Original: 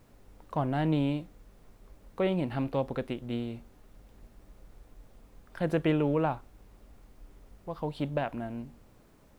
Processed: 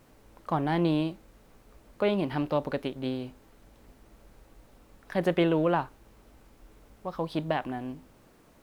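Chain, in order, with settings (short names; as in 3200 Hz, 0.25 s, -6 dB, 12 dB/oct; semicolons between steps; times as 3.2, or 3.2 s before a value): low shelf 120 Hz -8 dB; speed mistake 44.1 kHz file played as 48 kHz; bell 680 Hz -2 dB 0.3 oct; gain +3.5 dB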